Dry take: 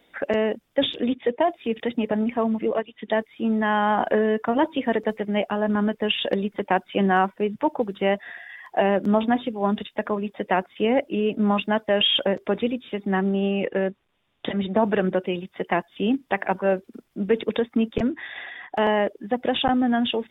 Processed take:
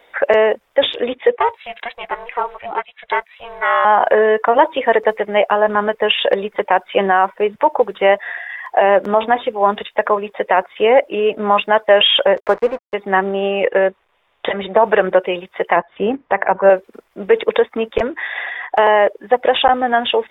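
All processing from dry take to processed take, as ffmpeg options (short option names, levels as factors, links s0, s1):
-filter_complex "[0:a]asettb=1/sr,asplit=3[s0][s1][s2];[s0]atrim=end=1.364[s3];[s1]atrim=start=1.36:end=3.85,asetpts=PTS-STARTPTS,afade=t=in:d=0.004:c=qsin,afade=t=out:st=2.486:d=0.004:c=qsin,highpass=810,aeval=exprs='val(0)*sin(2*PI*240*n/s)':c=same[s4];[s2]atrim=start=3.846[s5];[s3][s4]acrossfade=d=0.004:c1=hsin:c2=qsin[s6];[s6][s5]acrossfade=d=0.004:c1=qsin:c2=hsin,asettb=1/sr,asplit=3[s7][s8][s9];[s7]atrim=end=12.404[s10];[s8]atrim=start=12.4:end=12.94,asetpts=PTS-STARTPTS,afade=t=in:d=0.004:c=qsin,afade=t=out:st=0.536:d=0.004:c=qsin,highshelf=f=2100:t=q:w=1.5:g=-11,acompressor=mode=upward:threshold=0.00794:ratio=2.5:attack=3.2:release=140:knee=2.83:detection=peak,aeval=exprs='sgn(val(0))*max(abs(val(0))-0.0119,0)':c=same[s11];[s9]atrim=start=12.936[s12];[s10][s11]acrossfade=d=0.004:c1=hsin:c2=qsin[s13];[s13][s12]acrossfade=d=0.004:c1=qsin:c2=hsin,asettb=1/sr,asplit=3[s14][s15][s16];[s14]atrim=end=15.764[s17];[s15]atrim=start=15.76:end=16.7,asetpts=PTS-STARTPTS,afade=t=in:d=0.004:c=qsin,afade=t=out:st=0.936:d=0.004:c=qsin,lowpass=2000,equalizer=f=130:t=o:w=2:g=7[s18];[s16]atrim=start=16.696[s19];[s17][s18]acrossfade=d=0.004:c1=hsin:c2=qsin[s20];[s20][s19]acrossfade=d=0.004:c1=qsin:c2=hsin,equalizer=f=125:t=o:w=1:g=-8,equalizer=f=250:t=o:w=1:g=-10,equalizer=f=500:t=o:w=1:g=8,equalizer=f=1000:t=o:w=1:g=8,equalizer=f=2000:t=o:w=1:g=6,alimiter=level_in=1.88:limit=0.891:release=50:level=0:latency=1,volume=0.891"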